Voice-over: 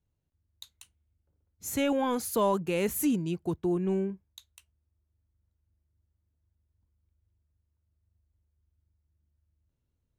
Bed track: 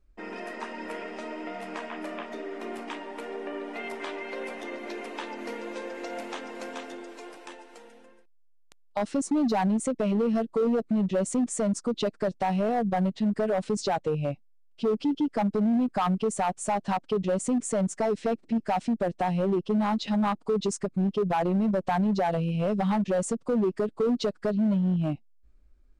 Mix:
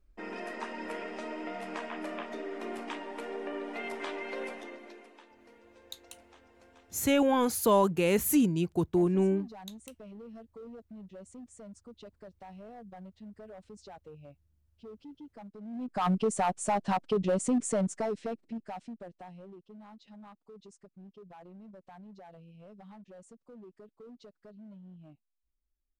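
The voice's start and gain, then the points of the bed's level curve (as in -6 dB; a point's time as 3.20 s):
5.30 s, +2.5 dB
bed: 4.44 s -2 dB
5.29 s -22 dB
15.60 s -22 dB
16.07 s -1.5 dB
17.70 s -1.5 dB
19.62 s -25.5 dB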